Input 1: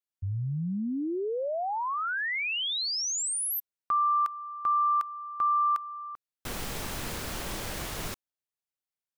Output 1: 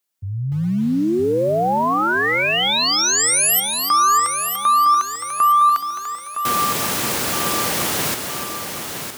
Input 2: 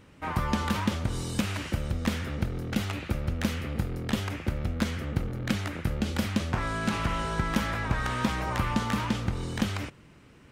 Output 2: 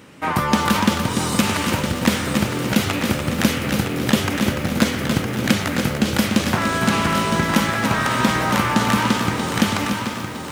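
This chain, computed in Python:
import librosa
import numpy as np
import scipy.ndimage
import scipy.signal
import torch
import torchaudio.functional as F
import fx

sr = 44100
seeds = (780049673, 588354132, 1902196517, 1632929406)

p1 = scipy.signal.sosfilt(scipy.signal.butter(2, 150.0, 'highpass', fs=sr, output='sos'), x)
p2 = fx.high_shelf(p1, sr, hz=6500.0, db=5.0)
p3 = fx.rider(p2, sr, range_db=4, speed_s=2.0)
p4 = p2 + (p3 * librosa.db_to_amplitude(-1.0))
p5 = fx.echo_feedback(p4, sr, ms=962, feedback_pct=45, wet_db=-7.5)
p6 = fx.echo_crushed(p5, sr, ms=292, feedback_pct=35, bits=7, wet_db=-7.0)
y = p6 * librosa.db_to_amplitude(5.0)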